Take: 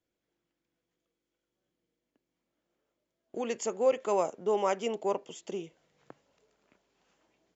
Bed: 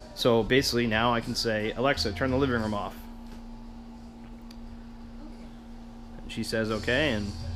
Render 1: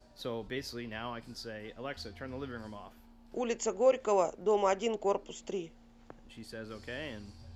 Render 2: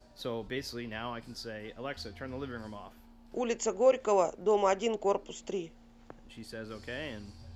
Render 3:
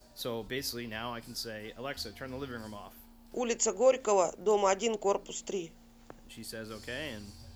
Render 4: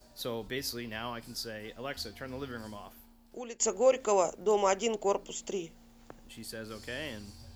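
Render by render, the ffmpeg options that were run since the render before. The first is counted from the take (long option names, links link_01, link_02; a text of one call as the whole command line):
ffmpeg -i in.wav -i bed.wav -filter_complex "[1:a]volume=-15.5dB[link_01];[0:a][link_01]amix=inputs=2:normalize=0" out.wav
ffmpeg -i in.wav -af "volume=1.5dB" out.wav
ffmpeg -i in.wav -af "aemphasis=mode=production:type=50fm,bandreject=frequency=89.02:width_type=h:width=4,bandreject=frequency=178.04:width_type=h:width=4,bandreject=frequency=267.06:width_type=h:width=4" out.wav
ffmpeg -i in.wav -filter_complex "[0:a]asplit=2[link_01][link_02];[link_01]atrim=end=3.6,asetpts=PTS-STARTPTS,afade=type=out:start_time=2.87:duration=0.73:silence=0.158489[link_03];[link_02]atrim=start=3.6,asetpts=PTS-STARTPTS,afade=type=in:duration=0.004:curve=hsin:silence=0.158489[link_04];[link_03][link_04]concat=n=2:v=0:a=1" out.wav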